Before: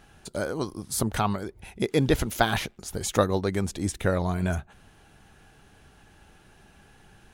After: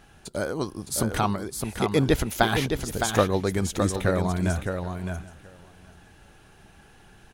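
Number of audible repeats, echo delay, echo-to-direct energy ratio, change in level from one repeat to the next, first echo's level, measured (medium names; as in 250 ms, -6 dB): 3, 612 ms, -6.0 dB, no regular repeats, -6.0 dB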